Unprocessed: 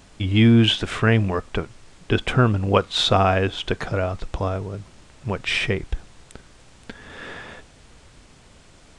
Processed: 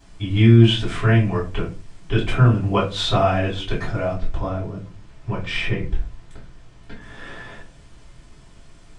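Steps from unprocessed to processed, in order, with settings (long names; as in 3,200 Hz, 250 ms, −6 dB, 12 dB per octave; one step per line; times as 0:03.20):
0:04.13–0:07.01: high-shelf EQ 7,500 Hz −12 dB
convolution reverb RT60 0.35 s, pre-delay 3 ms, DRR −7 dB
level −12.5 dB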